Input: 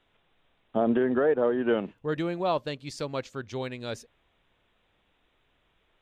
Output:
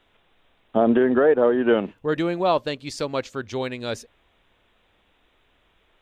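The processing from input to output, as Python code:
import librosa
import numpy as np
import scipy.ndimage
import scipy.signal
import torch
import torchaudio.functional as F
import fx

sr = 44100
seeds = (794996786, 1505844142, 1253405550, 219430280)

y = fx.peak_eq(x, sr, hz=140.0, db=-5.0, octaves=0.56)
y = y * 10.0 ** (6.5 / 20.0)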